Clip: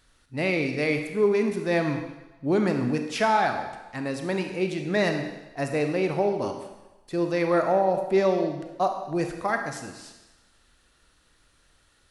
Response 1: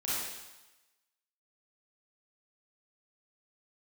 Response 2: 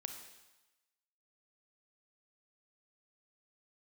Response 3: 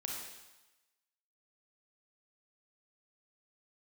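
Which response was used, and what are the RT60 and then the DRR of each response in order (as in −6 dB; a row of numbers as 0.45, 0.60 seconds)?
2; 1.1, 1.1, 1.1 seconds; −10.0, 5.0, −1.5 decibels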